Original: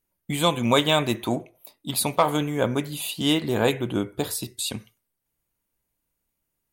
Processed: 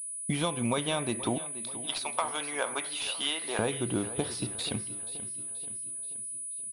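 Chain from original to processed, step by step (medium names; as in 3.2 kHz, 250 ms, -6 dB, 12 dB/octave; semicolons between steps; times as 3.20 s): 1.38–3.59 s: high-pass 850 Hz 12 dB/octave; compression 6:1, threshold -30 dBFS, peak gain reduction 15 dB; feedback delay 480 ms, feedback 51%, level -15 dB; class-D stage that switches slowly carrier 9.9 kHz; trim +3 dB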